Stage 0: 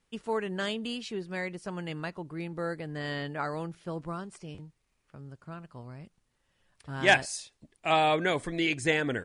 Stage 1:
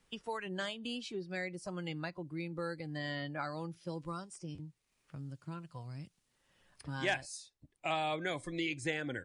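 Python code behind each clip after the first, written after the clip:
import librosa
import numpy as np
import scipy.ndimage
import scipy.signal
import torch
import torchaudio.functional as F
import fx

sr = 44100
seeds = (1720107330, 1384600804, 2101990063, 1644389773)

y = fx.noise_reduce_blind(x, sr, reduce_db=12)
y = fx.band_squash(y, sr, depth_pct=70)
y = y * 10.0 ** (-6.0 / 20.0)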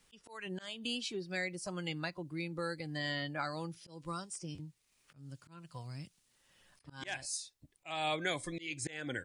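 y = fx.high_shelf(x, sr, hz=2400.0, db=8.0)
y = fx.auto_swell(y, sr, attack_ms=239.0)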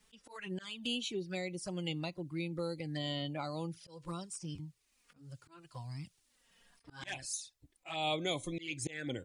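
y = fx.env_flanger(x, sr, rest_ms=4.9, full_db=-36.0)
y = y * 10.0 ** (2.5 / 20.0)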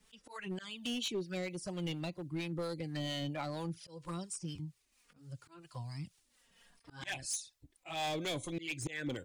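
y = np.clip(10.0 ** (34.0 / 20.0) * x, -1.0, 1.0) / 10.0 ** (34.0 / 20.0)
y = fx.harmonic_tremolo(y, sr, hz=4.3, depth_pct=50, crossover_hz=590.0)
y = y * 10.0 ** (3.5 / 20.0)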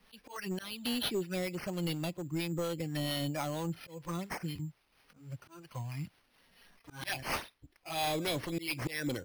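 y = np.repeat(x[::6], 6)[:len(x)]
y = y * 10.0 ** (3.5 / 20.0)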